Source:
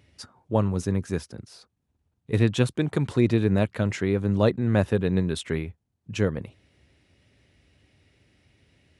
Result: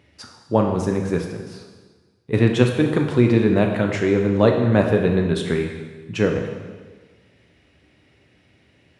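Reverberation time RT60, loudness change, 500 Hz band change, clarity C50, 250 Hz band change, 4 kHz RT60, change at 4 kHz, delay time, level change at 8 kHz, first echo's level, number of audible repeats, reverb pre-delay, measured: 1.4 s, +5.5 dB, +7.5 dB, 5.5 dB, +5.5 dB, 1.3 s, +4.0 dB, no echo audible, can't be measured, no echo audible, no echo audible, 7 ms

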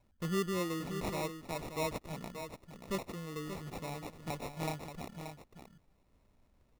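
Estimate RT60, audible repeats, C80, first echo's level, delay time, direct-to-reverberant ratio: no reverb audible, 1, no reverb audible, −8.5 dB, 580 ms, no reverb audible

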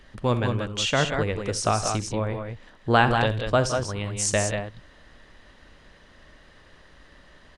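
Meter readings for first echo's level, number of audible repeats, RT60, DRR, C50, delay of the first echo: −15.0 dB, 2, no reverb audible, no reverb audible, no reverb audible, 64 ms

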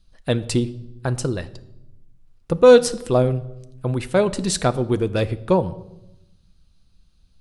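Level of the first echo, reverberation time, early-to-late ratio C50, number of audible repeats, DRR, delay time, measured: no echo audible, 0.90 s, 18.0 dB, no echo audible, 11.5 dB, no echo audible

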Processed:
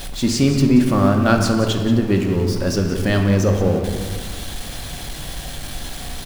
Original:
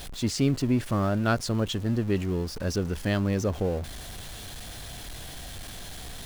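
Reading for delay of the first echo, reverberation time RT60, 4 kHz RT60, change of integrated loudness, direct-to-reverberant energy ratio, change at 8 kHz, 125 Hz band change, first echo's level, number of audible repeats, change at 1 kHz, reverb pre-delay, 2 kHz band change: 180 ms, 1.5 s, 0.95 s, +9.5 dB, 2.5 dB, +8.5 dB, +9.0 dB, −12.0 dB, 1, +9.5 dB, 4 ms, +9.0 dB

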